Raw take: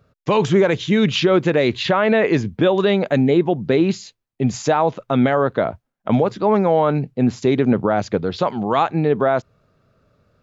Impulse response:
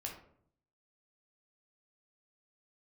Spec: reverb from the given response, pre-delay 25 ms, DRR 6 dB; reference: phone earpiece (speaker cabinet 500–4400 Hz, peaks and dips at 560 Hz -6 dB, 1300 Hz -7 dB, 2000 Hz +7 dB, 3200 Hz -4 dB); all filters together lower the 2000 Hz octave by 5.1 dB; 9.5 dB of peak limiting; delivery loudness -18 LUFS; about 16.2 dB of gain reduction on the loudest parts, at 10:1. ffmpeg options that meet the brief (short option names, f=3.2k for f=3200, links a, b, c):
-filter_complex "[0:a]equalizer=f=2k:t=o:g=-8.5,acompressor=threshold=-29dB:ratio=10,alimiter=level_in=1dB:limit=-24dB:level=0:latency=1,volume=-1dB,asplit=2[a][b];[1:a]atrim=start_sample=2205,adelay=25[c];[b][c]afir=irnorm=-1:irlink=0,volume=-4.5dB[d];[a][d]amix=inputs=2:normalize=0,highpass=500,equalizer=f=560:t=q:w=4:g=-6,equalizer=f=1.3k:t=q:w=4:g=-7,equalizer=f=2k:t=q:w=4:g=7,equalizer=f=3.2k:t=q:w=4:g=-4,lowpass=f=4.4k:w=0.5412,lowpass=f=4.4k:w=1.3066,volume=23dB"